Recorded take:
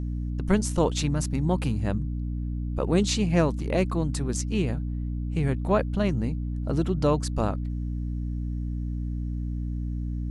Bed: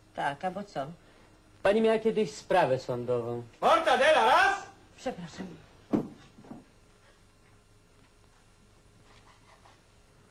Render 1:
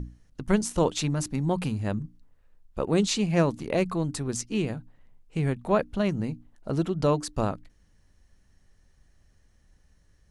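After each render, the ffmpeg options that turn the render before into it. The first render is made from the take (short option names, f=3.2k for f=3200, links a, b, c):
-af "bandreject=f=60:t=h:w=6,bandreject=f=120:t=h:w=6,bandreject=f=180:t=h:w=6,bandreject=f=240:t=h:w=6,bandreject=f=300:t=h:w=6"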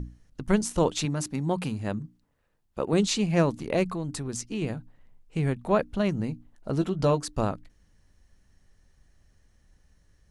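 -filter_complex "[0:a]asettb=1/sr,asplit=3[a][b][c];[a]atrim=end=1.054[d];[b]atrim=start=1.05:end=2.93,asetpts=PTS-STARTPTS,afade=t=in:d=0.004:c=qsin,afade=t=out:st=1.876:d=0.004:c=qsin,highpass=f=130:p=1[e];[c]atrim=start=2.926[f];[d][e]acrossfade=d=0.004:c1=hsin:c2=qsin[g];[g][f]acrossfade=d=0.004:c1=qsin:c2=hsin,asettb=1/sr,asplit=3[h][i][j];[h]atrim=end=3.854[k];[i]atrim=start=3.85:end=4.62,asetpts=PTS-STARTPTS,afade=t=in:d=0.004:c=qsin,afade=t=out:st=0.766:d=0.004:c=qsin,acompressor=threshold=-30dB:ratio=2:attack=3.2:release=140:knee=1:detection=peak[l];[j]atrim=start=4.616[m];[k][l]acrossfade=d=0.004:c1=hsin:c2=qsin[n];[n][m]acrossfade=d=0.004:c1=qsin:c2=hsin,asettb=1/sr,asplit=3[o][p][q];[o]atrim=end=6.804[r];[p]atrim=start=6.8:end=7.25,asetpts=PTS-STARTPTS,afade=t=in:d=0.004:c=qsin,afade=t=out:st=0.446:d=0.004:c=qsin,asplit=2[s][t];[t]adelay=15,volume=-8dB[u];[s][u]amix=inputs=2:normalize=0,atrim=end_sample=19845[v];[q]atrim=start=7.246[w];[r][v]acrossfade=d=0.004:c1=hsin:c2=qsin[x];[x][w]acrossfade=d=0.004:c1=qsin:c2=hsin"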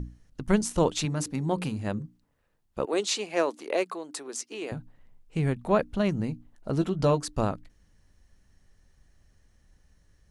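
-filter_complex "[0:a]asettb=1/sr,asplit=3[a][b][c];[a]atrim=end=1.024[d];[b]atrim=start=1.02:end=2.04,asetpts=PTS-STARTPTS,afade=t=in:d=0.004:c=qsin,afade=t=out:st=1.016:d=0.004:c=qsin,bandreject=f=57.53:t=h:w=4,bandreject=f=115.06:t=h:w=4,bandreject=f=172.59:t=h:w=4,bandreject=f=230.12:t=h:w=4,bandreject=f=287.65:t=h:w=4,bandreject=f=345.18:t=h:w=4,bandreject=f=402.71:t=h:w=4,bandreject=f=460.24:t=h:w=4,bandreject=f=517.77:t=h:w=4[e];[c]atrim=start=2.036[f];[d][e]acrossfade=d=0.004:c1=hsin:c2=qsin[g];[g][f]acrossfade=d=0.004:c1=qsin:c2=hsin,asettb=1/sr,asplit=3[h][i][j];[h]atrim=end=2.854[k];[i]atrim=start=2.85:end=4.72,asetpts=PTS-STARTPTS,afade=t=in:d=0.004:c=qsin,afade=t=out:st=1.866:d=0.004:c=qsin,highpass=f=350:w=0.5412,highpass=f=350:w=1.3066[l];[j]atrim=start=4.716[m];[k][l]acrossfade=d=0.004:c1=hsin:c2=qsin[n];[n][m]acrossfade=d=0.004:c1=qsin:c2=hsin"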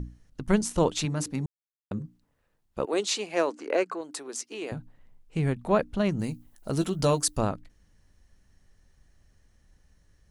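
-filter_complex "[0:a]asettb=1/sr,asplit=3[a][b][c];[a]atrim=end=3.504[d];[b]atrim=start=3.5:end=4.01,asetpts=PTS-STARTPTS,afade=t=in:d=0.004:c=qsin,afade=t=out:st=0.506:d=0.004:c=qsin,highpass=120,equalizer=f=280:t=q:w=4:g=6,equalizer=f=480:t=q:w=4:g=3,equalizer=f=1.5k:t=q:w=4:g=8,equalizer=f=3.6k:t=q:w=4:g=-9,lowpass=f=8.1k:w=0.5412,lowpass=f=8.1k:w=1.3066[e];[c]atrim=start=4.006[f];[d][e]acrossfade=d=0.004:c1=hsin:c2=qsin[g];[g][f]acrossfade=d=0.004:c1=qsin:c2=hsin,asettb=1/sr,asplit=3[h][i][j];[h]atrim=end=6.194[k];[i]atrim=start=6.19:end=7.38,asetpts=PTS-STARTPTS,afade=t=in:d=0.004:c=qsin,afade=t=out:st=1.186:d=0.004:c=qsin,aemphasis=mode=production:type=75fm[l];[j]atrim=start=7.376[m];[k][l]acrossfade=d=0.004:c1=hsin:c2=qsin[n];[n][m]acrossfade=d=0.004:c1=qsin:c2=hsin,asplit=3[o][p][q];[o]atrim=end=1.46,asetpts=PTS-STARTPTS,afade=t=out:st=1.456:d=0.004:c=hsin[r];[p]atrim=start=1.46:end=1.91,asetpts=PTS-STARTPTS,volume=0[s];[q]atrim=start=1.91,asetpts=PTS-STARTPTS,afade=t=in:d=0.004:c=hsin[t];[r][s][t]concat=n=3:v=0:a=1"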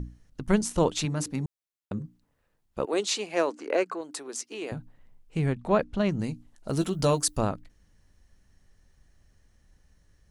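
-filter_complex "[0:a]asettb=1/sr,asplit=3[a][b][c];[a]atrim=end=5.464[d];[b]atrim=start=5.46:end=6.69,asetpts=PTS-STARTPTS,afade=t=in:d=0.004:c=qsin,afade=t=out:st=1.226:d=0.004:c=qsin,lowpass=7.8k[e];[c]atrim=start=6.686[f];[d][e]acrossfade=d=0.004:c1=hsin:c2=qsin[g];[g][f]acrossfade=d=0.004:c1=qsin:c2=hsin"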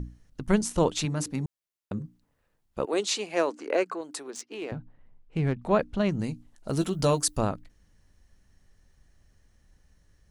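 -filter_complex "[0:a]asettb=1/sr,asplit=3[a][b][c];[a]atrim=end=4.304[d];[b]atrim=start=4.3:end=5.62,asetpts=PTS-STARTPTS,afade=t=in:d=0.004:c=qsin,afade=t=out:st=1.316:d=0.004:c=qsin,adynamicsmooth=sensitivity=7:basefreq=3.2k[e];[c]atrim=start=5.616[f];[d][e]acrossfade=d=0.004:c1=hsin:c2=qsin[g];[g][f]acrossfade=d=0.004:c1=qsin:c2=hsin"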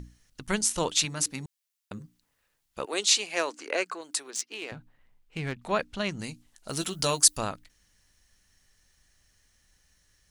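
-af "tiltshelf=f=1.2k:g=-8.5"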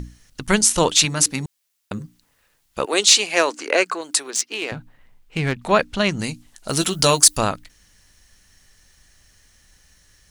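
-af "acontrast=63,alimiter=level_in=4.5dB:limit=-1dB:release=50:level=0:latency=1"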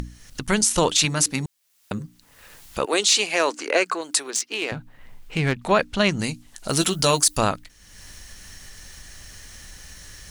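-af "alimiter=limit=-8dB:level=0:latency=1:release=41,acompressor=mode=upward:threshold=-29dB:ratio=2.5"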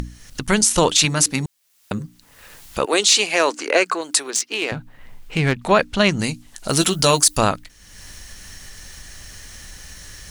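-af "volume=3.5dB"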